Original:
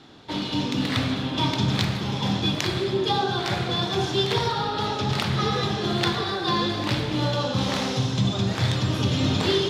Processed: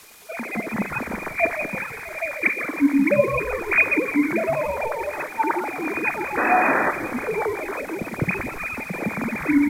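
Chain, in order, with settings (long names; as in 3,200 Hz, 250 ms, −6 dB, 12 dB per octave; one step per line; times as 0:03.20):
three sine waves on the formant tracks
high-shelf EQ 2,900 Hz +2.5 dB
bit-depth reduction 8 bits, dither triangular
pitch shifter −6 semitones
sound drawn into the spectrogram noise, 0:06.37–0:06.91, 210–2,000 Hz −21 dBFS
echo with shifted repeats 169 ms, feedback 59%, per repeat −74 Hz, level −13 dB
on a send at −17 dB: convolution reverb RT60 0.50 s, pre-delay 6 ms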